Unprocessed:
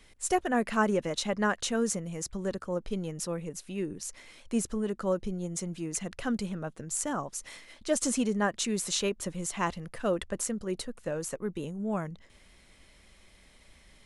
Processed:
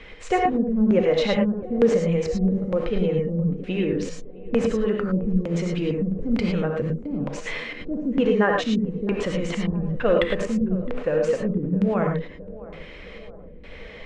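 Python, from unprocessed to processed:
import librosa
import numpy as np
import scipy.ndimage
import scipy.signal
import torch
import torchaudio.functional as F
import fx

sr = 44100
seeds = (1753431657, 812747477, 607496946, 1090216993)

p1 = scipy.signal.sosfilt(scipy.signal.butter(4, 8500.0, 'lowpass', fs=sr, output='sos'), x)
p2 = fx.peak_eq(p1, sr, hz=480.0, db=13.5, octaves=0.23)
p3 = fx.over_compress(p2, sr, threshold_db=-38.0, ratio=-1.0)
p4 = p2 + F.gain(torch.from_numpy(p3), -1.0).numpy()
p5 = fx.filter_lfo_lowpass(p4, sr, shape='square', hz=1.1, low_hz=220.0, high_hz=2500.0, q=1.5)
p6 = p5 + fx.echo_banded(p5, sr, ms=663, feedback_pct=66, hz=480.0, wet_db=-17, dry=0)
p7 = fx.rev_gated(p6, sr, seeds[0], gate_ms=130, shape='rising', drr_db=1.5)
y = F.gain(torch.from_numpy(p7), 3.0).numpy()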